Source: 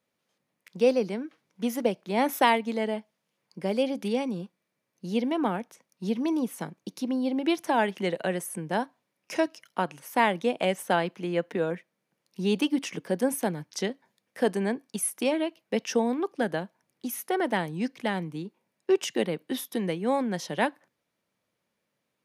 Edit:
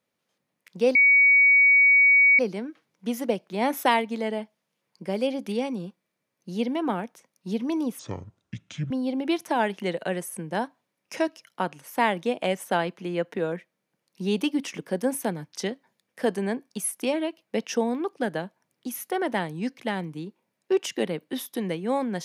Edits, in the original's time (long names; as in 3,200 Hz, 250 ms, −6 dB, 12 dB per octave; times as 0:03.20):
0:00.95: insert tone 2,250 Hz −13.5 dBFS 1.44 s
0:06.55–0:07.09: play speed 59%